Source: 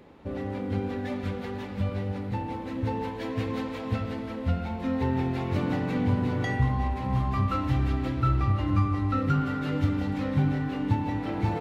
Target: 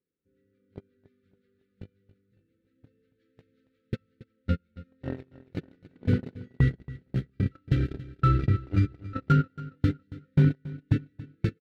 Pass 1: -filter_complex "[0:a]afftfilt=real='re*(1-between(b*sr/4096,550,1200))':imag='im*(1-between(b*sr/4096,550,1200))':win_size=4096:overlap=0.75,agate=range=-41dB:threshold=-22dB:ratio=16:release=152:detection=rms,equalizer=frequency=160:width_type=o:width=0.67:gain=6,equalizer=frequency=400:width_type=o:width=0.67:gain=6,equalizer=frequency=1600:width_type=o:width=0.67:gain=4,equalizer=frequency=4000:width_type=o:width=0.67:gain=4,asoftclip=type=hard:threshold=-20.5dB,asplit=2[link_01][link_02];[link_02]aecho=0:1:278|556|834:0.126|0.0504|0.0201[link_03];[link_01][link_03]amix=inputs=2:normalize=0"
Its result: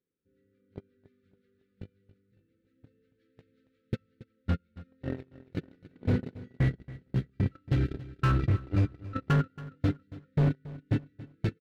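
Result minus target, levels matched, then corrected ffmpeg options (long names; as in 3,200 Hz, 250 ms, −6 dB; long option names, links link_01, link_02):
hard clipping: distortion +21 dB
-filter_complex "[0:a]afftfilt=real='re*(1-between(b*sr/4096,550,1200))':imag='im*(1-between(b*sr/4096,550,1200))':win_size=4096:overlap=0.75,agate=range=-41dB:threshold=-22dB:ratio=16:release=152:detection=rms,equalizer=frequency=160:width_type=o:width=0.67:gain=6,equalizer=frequency=400:width_type=o:width=0.67:gain=6,equalizer=frequency=1600:width_type=o:width=0.67:gain=4,equalizer=frequency=4000:width_type=o:width=0.67:gain=4,asoftclip=type=hard:threshold=-12dB,asplit=2[link_01][link_02];[link_02]aecho=0:1:278|556|834:0.126|0.0504|0.0201[link_03];[link_01][link_03]amix=inputs=2:normalize=0"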